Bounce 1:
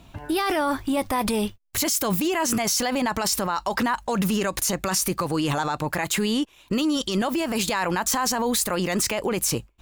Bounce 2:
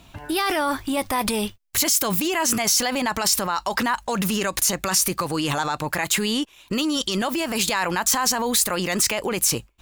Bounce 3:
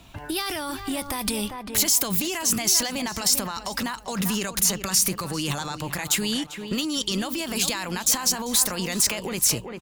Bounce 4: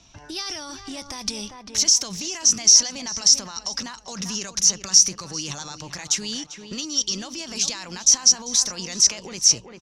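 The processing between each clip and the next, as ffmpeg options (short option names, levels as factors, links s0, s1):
-af "tiltshelf=f=1100:g=-3,volume=1.19"
-filter_complex "[0:a]asplit=2[s0][s1];[s1]adelay=395,lowpass=f=2400:p=1,volume=0.299,asplit=2[s2][s3];[s3]adelay=395,lowpass=f=2400:p=1,volume=0.34,asplit=2[s4][s5];[s5]adelay=395,lowpass=f=2400:p=1,volume=0.34,asplit=2[s6][s7];[s7]adelay=395,lowpass=f=2400:p=1,volume=0.34[s8];[s0][s2][s4][s6][s8]amix=inputs=5:normalize=0,acrossover=split=210|3000[s9][s10][s11];[s10]acompressor=threshold=0.0316:ratio=6[s12];[s9][s12][s11]amix=inputs=3:normalize=0"
-af "lowpass=f=5800:t=q:w=11,volume=0.447"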